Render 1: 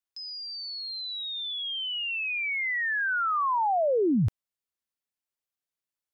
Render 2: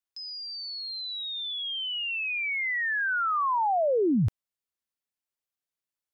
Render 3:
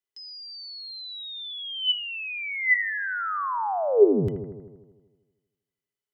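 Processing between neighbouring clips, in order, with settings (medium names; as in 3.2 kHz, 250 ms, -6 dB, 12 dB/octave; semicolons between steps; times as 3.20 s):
no audible change
small resonant body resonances 410/2000/3000 Hz, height 17 dB, ringing for 85 ms; on a send: bucket-brigade echo 79 ms, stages 1024, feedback 66%, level -9 dB; on the sum: trim -3 dB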